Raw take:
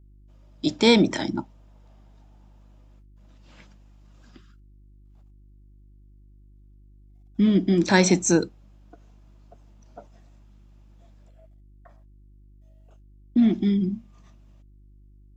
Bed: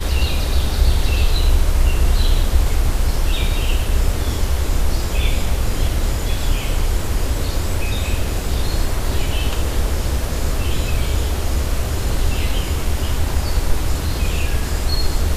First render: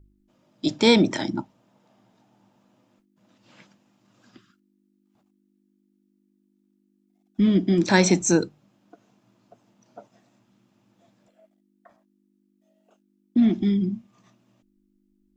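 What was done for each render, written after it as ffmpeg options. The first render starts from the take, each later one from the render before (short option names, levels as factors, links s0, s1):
-af "bandreject=f=50:t=h:w=4,bandreject=f=100:t=h:w=4,bandreject=f=150:t=h:w=4"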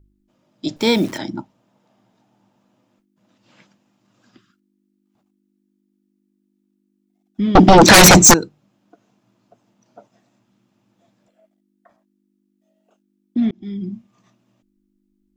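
-filter_complex "[0:a]asettb=1/sr,asplit=3[s0][s1][s2];[s0]atrim=end=0.764[s3];[s1]atrim=start=0.76:end=1.18,asetpts=PTS-STARTPTS,afade=t=in:d=0.004:c=qsin,afade=t=out:st=0.416:d=0.004:c=qsin,acrusher=bits=7:dc=4:mix=0:aa=0.000001[s4];[s2]atrim=start=1.176[s5];[s3][s4]acrossfade=d=0.004:c1=hsin:c2=qsin[s6];[s6][s5]acrossfade=d=0.004:c1=qsin:c2=hsin,asettb=1/sr,asplit=3[s7][s8][s9];[s7]atrim=end=7.554[s10];[s8]atrim=start=7.55:end=8.34,asetpts=PTS-STARTPTS,afade=t=in:d=0.004:c=qsin,afade=t=out:st=0.786:d=0.004:c=qsin,aeval=exprs='0.708*sin(PI/2*7.94*val(0)/0.708)':c=same[s11];[s9]atrim=start=8.336[s12];[s10][s11]acrossfade=d=0.004:c1=hsin:c2=qsin[s13];[s13][s12]acrossfade=d=0.004:c1=qsin:c2=hsin,asplit=2[s14][s15];[s14]atrim=end=13.51,asetpts=PTS-STARTPTS,afade=t=out:st=13.506:d=0.004:c=hsin[s16];[s15]atrim=start=13.51,asetpts=PTS-STARTPTS,afade=t=in:d=0.46[s17];[s16][s17]concat=n=2:v=0:a=1"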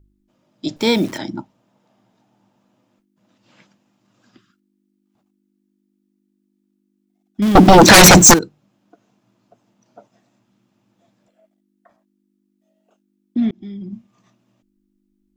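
-filter_complex "[0:a]asettb=1/sr,asplit=3[s0][s1][s2];[s0]atrim=end=7.424[s3];[s1]atrim=start=7.42:end=8.39,asetpts=PTS-STARTPTS,afade=t=in:d=0.004:c=qsin,afade=t=out:st=0.966:d=0.004:c=qsin,aeval=exprs='val(0)+0.5*0.126*sgn(val(0))':c=same[s4];[s2]atrim=start=8.386[s5];[s3][s4]acrossfade=d=0.004:c1=hsin:c2=qsin[s6];[s6][s5]acrossfade=d=0.004:c1=qsin:c2=hsin,asettb=1/sr,asplit=3[s7][s8][s9];[s7]atrim=end=13.534[s10];[s8]atrim=start=13.53:end=13.93,asetpts=PTS-STARTPTS,afade=t=in:d=0.004:c=qsin,afade=t=out:st=0.396:d=0.004:c=qsin,acompressor=threshold=0.0398:ratio=6:attack=3.2:release=140:knee=1:detection=peak[s11];[s9]atrim=start=13.926[s12];[s10][s11]acrossfade=d=0.004:c1=hsin:c2=qsin[s13];[s13][s12]acrossfade=d=0.004:c1=qsin:c2=hsin"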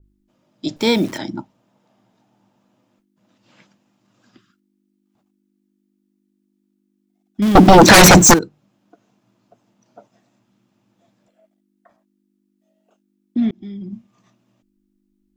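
-af "adynamicequalizer=threshold=0.0631:dfrequency=2400:dqfactor=0.7:tfrequency=2400:tqfactor=0.7:attack=5:release=100:ratio=0.375:range=2:mode=cutabove:tftype=highshelf"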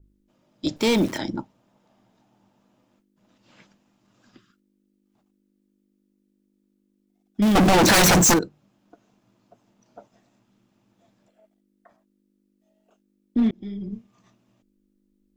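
-af "tremolo=f=220:d=0.333,asoftclip=type=hard:threshold=0.188"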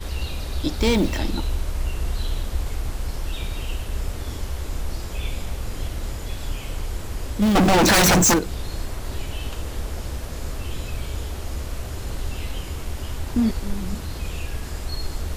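-filter_complex "[1:a]volume=0.316[s0];[0:a][s0]amix=inputs=2:normalize=0"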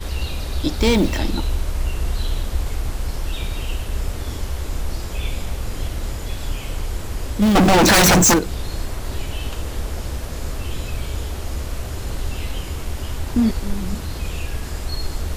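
-af "volume=1.41"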